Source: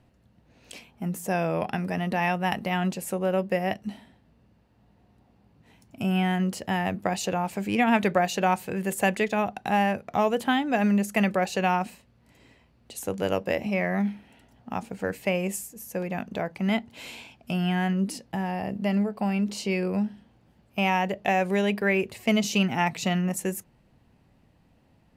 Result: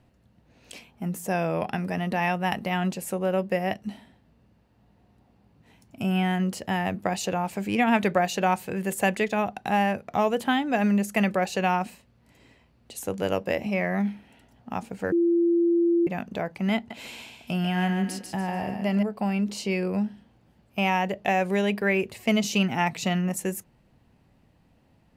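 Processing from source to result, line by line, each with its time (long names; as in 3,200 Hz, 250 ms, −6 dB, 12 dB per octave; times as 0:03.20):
0:15.12–0:16.07: beep over 341 Hz −18 dBFS
0:16.76–0:19.03: feedback echo with a high-pass in the loop 144 ms, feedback 34%, level −5 dB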